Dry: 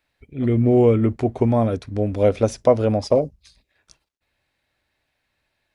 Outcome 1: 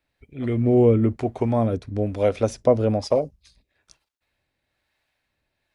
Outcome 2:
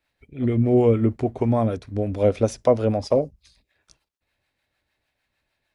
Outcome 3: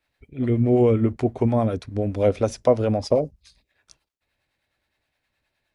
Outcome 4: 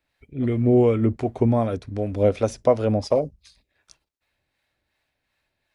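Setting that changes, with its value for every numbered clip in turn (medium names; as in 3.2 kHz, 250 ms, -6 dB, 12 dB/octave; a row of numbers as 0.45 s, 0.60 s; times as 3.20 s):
harmonic tremolo, rate: 1.1 Hz, 6.6 Hz, 9.6 Hz, 2.7 Hz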